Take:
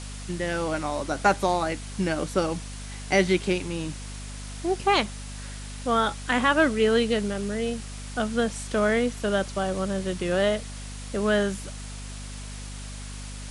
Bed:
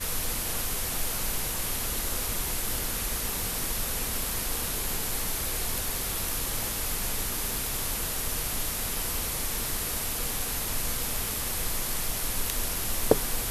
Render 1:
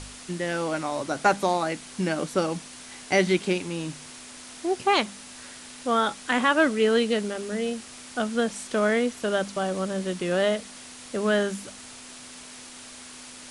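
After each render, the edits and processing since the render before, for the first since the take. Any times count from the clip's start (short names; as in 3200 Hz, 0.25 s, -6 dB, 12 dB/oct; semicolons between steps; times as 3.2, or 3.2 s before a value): de-hum 50 Hz, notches 4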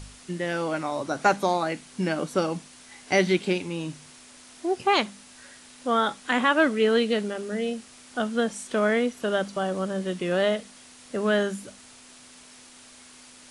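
noise print and reduce 6 dB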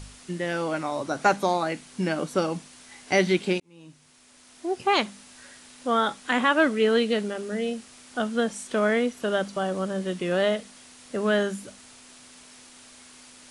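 3.6–5.01 fade in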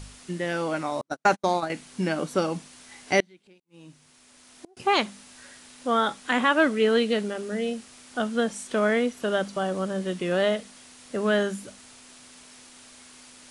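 1.01–1.7 gate -27 dBFS, range -47 dB; 3.2–4.77 flipped gate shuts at -28 dBFS, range -31 dB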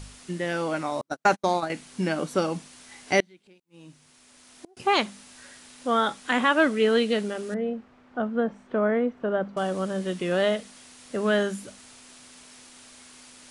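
7.54–9.57 LPF 1300 Hz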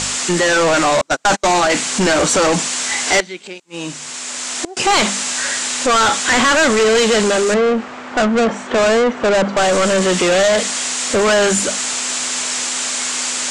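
overdrive pedal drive 36 dB, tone 3600 Hz, clips at -6.5 dBFS; synth low-pass 7500 Hz, resonance Q 3.8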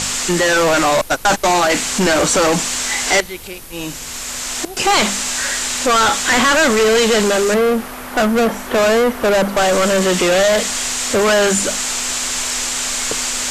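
add bed -5.5 dB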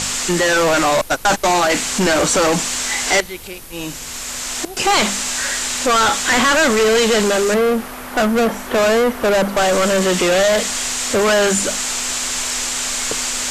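gain -1 dB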